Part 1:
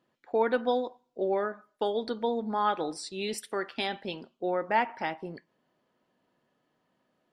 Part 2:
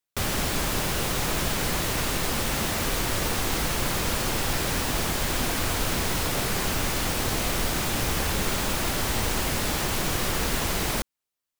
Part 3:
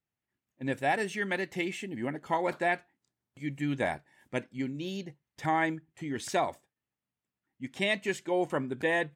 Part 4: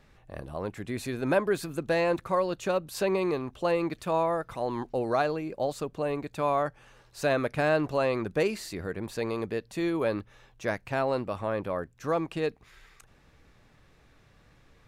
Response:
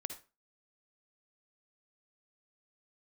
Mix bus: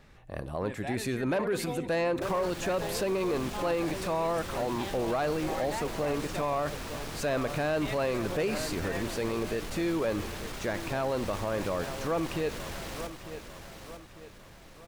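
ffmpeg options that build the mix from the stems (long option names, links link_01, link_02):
-filter_complex "[0:a]adelay=1000,volume=-10dB[link_01];[1:a]highshelf=frequency=8800:gain=-8.5,asoftclip=type=tanh:threshold=-23dB,adelay=2050,volume=-10.5dB,asplit=2[link_02][link_03];[link_03]volume=-8dB[link_04];[2:a]volume=-10dB[link_05];[3:a]volume=1dB,asplit=3[link_06][link_07][link_08];[link_07]volume=-10.5dB[link_09];[link_08]volume=-14.5dB[link_10];[4:a]atrim=start_sample=2205[link_11];[link_09][link_11]afir=irnorm=-1:irlink=0[link_12];[link_04][link_10]amix=inputs=2:normalize=0,aecho=0:1:898|1796|2694|3592|4490|5388:1|0.43|0.185|0.0795|0.0342|0.0147[link_13];[link_01][link_02][link_05][link_06][link_12][link_13]amix=inputs=6:normalize=0,asoftclip=type=tanh:threshold=-16dB,alimiter=limit=-22.5dB:level=0:latency=1:release=38"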